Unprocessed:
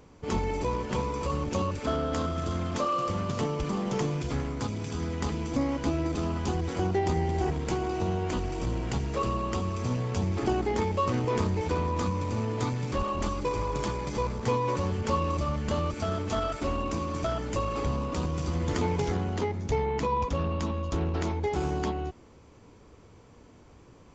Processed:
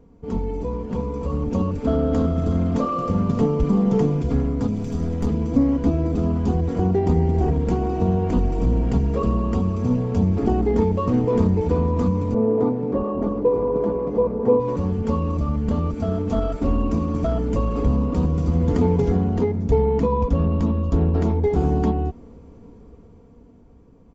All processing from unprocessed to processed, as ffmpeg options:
-filter_complex "[0:a]asettb=1/sr,asplit=3[a][b][c];[a]atrim=end=4.744[d];[b]atrim=start=4.74:end=5.27,asetpts=PTS-STARTPTS,afade=t=in:d=0.004:c=qsin,afade=t=out:st=0.526:d=0.004:c=qsin,highshelf=f=5k:g=8.5,aeval=exprs='clip(val(0),-1,0.02)':c=same[e];[c]atrim=start=5.266[f];[d][e]acrossfade=d=0.004:c1=hsin:c2=qsin[g];[g][f]acrossfade=d=0.004:c1=qsin:c2=hsin,asettb=1/sr,asplit=3[h][i][j];[h]atrim=end=12.344[k];[i]atrim=start=12.34:end=14.6,asetpts=PTS-STARTPTS,afade=t=in:d=0.004:c=qsin,afade=t=out:st=2.256:d=0.004:c=qsin,acontrast=86,bandpass=f=490:t=q:w=1.1,aecho=1:1:947:0.251,atrim=end_sample=99666[l];[j]atrim=start=14.596[m];[k][l]acrossfade=d=0.004:c1=hsin:c2=qsin[n];[n][m]acrossfade=d=0.004:c1=qsin:c2=hsin,tiltshelf=f=850:g=10,aecho=1:1:4.3:0.48,dynaudnorm=f=230:g=13:m=11.5dB,volume=-5.5dB"

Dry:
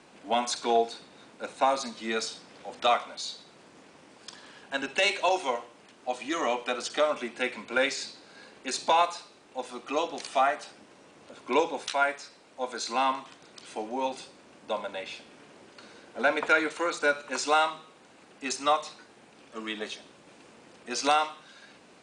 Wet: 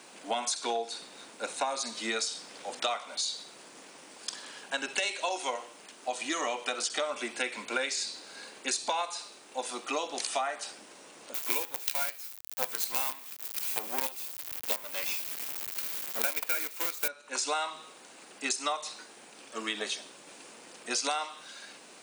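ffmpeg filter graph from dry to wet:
-filter_complex "[0:a]asettb=1/sr,asplit=3[a][b][c];[a]atrim=end=11.344[d];[b]atrim=start=11.34:end=17.08,asetpts=PTS-STARTPTS,afade=t=in:d=0.004:c=qsin,afade=t=out:st=5.736:d=0.004:c=qsin,equalizer=f=2.4k:t=o:w=0.38:g=8,acontrast=40,acrusher=bits=4:dc=4:mix=0:aa=0.000001[e];[c]atrim=start=17.076[f];[d][e]acrossfade=d=0.004:c1=hsin:c2=qsin[g];[g][f]acrossfade=d=0.004:c1=qsin:c2=hsin,highpass=110,aemphasis=mode=production:type=bsi,acompressor=threshold=-31dB:ratio=6,volume=2.5dB"

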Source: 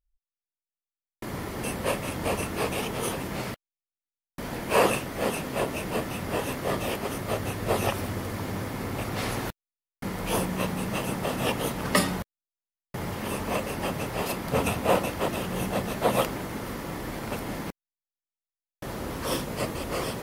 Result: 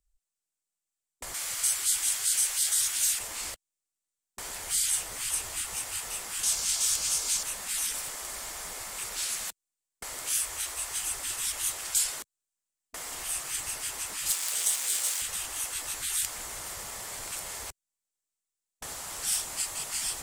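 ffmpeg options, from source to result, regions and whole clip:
-filter_complex "[0:a]asettb=1/sr,asplit=3[a][b][c];[a]atrim=end=1.344[d];[b]atrim=start=1.34:end=3.19,asetpts=PTS-STARTPTS,afade=t=in:d=0.004:c=qsin,afade=t=out:st=1.846:d=0.004:c=qsin,acontrast=59,aeval=exprs='val(0)+0.00501*(sin(2*PI*50*n/s)+sin(2*PI*2*50*n/s)/2+sin(2*PI*3*50*n/s)/3+sin(2*PI*4*50*n/s)/4+sin(2*PI*5*50*n/s)/5)':c=same[e];[c]atrim=start=3.186[f];[d][e]acrossfade=d=0.004:c1=hsin:c2=qsin[g];[g][f]acrossfade=d=0.004:c1=qsin:c2=hsin,asettb=1/sr,asplit=3[h][i][j];[h]atrim=end=6.434[k];[i]atrim=start=6.43:end=7.43,asetpts=PTS-STARTPTS,afade=t=in:d=0.004:c=qsin,afade=t=out:st=0.996:d=0.004:c=qsin,equalizer=f=5.6k:t=o:w=1.4:g=11.5,bandreject=f=1.9k:w=8.5[l];[j]atrim=start=7.426[m];[k][l]acrossfade=d=0.004:c1=hsin:c2=qsin[n];[n][m]acrossfade=d=0.004:c1=qsin:c2=hsin,asettb=1/sr,asplit=3[o][p][q];[o]atrim=end=10.374[r];[p]atrim=start=10.37:end=10.95,asetpts=PTS-STARTPTS,afade=t=in:d=0.004:c=qsin,afade=t=out:st=0.576:d=0.004:c=qsin,highpass=80,lowshelf=f=420:g=3[s];[q]atrim=start=10.946[t];[r][s]acrossfade=d=0.004:c1=hsin:c2=qsin[u];[u][t]acrossfade=d=0.004:c1=qsin:c2=hsin,asettb=1/sr,asplit=3[v][w][x];[v]atrim=end=14.304[y];[w]atrim=start=14.3:end=15.22,asetpts=PTS-STARTPTS,afade=t=in:d=0.004:c=qsin,afade=t=out:st=0.916:d=0.004:c=qsin,aeval=exprs='val(0)+0.5*0.0355*sgn(val(0))':c=same,highpass=1.4k[z];[x]atrim=start=15.216[aa];[y][z]acrossfade=d=0.004:c1=hsin:c2=qsin[ab];[ab][aa]acrossfade=d=0.004:c1=qsin:c2=hsin,afftfilt=real='re*lt(hypot(re,im),0.0562)':imag='im*lt(hypot(re,im),0.0562)':win_size=1024:overlap=0.75,equalizer=f=7.8k:w=1.6:g=13.5,acrossover=split=130|3000[ac][ad][ae];[ad]acompressor=threshold=-45dB:ratio=6[af];[ac][af][ae]amix=inputs=3:normalize=0,volume=1.5dB"

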